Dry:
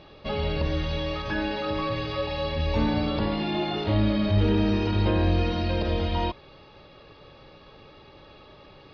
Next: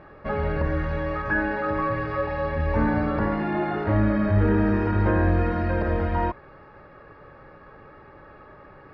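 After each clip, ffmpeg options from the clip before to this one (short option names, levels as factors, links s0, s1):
-af "highshelf=f=2400:t=q:w=3:g=-13,volume=1.19"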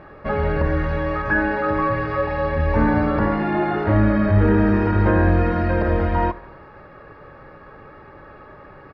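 -af "aecho=1:1:74|148|222|296|370:0.0944|0.0557|0.0329|0.0194|0.0114,volume=1.68"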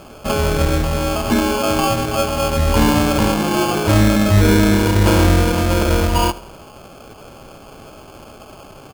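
-af "acrusher=samples=23:mix=1:aa=0.000001,volume=1.5"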